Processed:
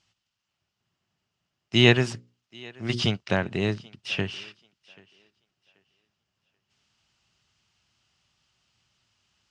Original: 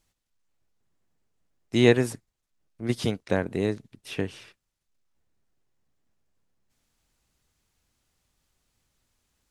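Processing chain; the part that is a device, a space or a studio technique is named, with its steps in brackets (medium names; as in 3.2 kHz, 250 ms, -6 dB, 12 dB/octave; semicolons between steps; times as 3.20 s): 2.04–3.02 s: hum notches 60/120/180/240/300/360/420/480/540 Hz; car door speaker (cabinet simulation 93–6800 Hz, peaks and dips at 110 Hz +4 dB, 280 Hz -8 dB, 480 Hz -9 dB, 1.3 kHz +3 dB, 2.9 kHz +10 dB, 5 kHz +5 dB); thinning echo 784 ms, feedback 26%, high-pass 260 Hz, level -23.5 dB; trim +3 dB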